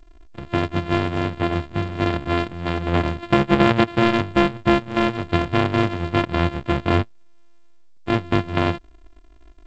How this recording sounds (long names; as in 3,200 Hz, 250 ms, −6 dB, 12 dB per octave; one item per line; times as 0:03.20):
a buzz of ramps at a fixed pitch in blocks of 128 samples
G.722